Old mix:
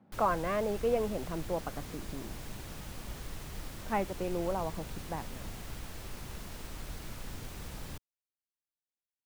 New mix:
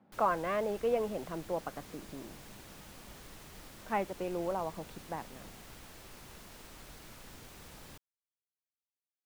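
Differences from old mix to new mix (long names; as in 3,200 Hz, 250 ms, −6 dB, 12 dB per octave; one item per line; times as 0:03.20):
background −4.5 dB
master: add low-shelf EQ 160 Hz −9.5 dB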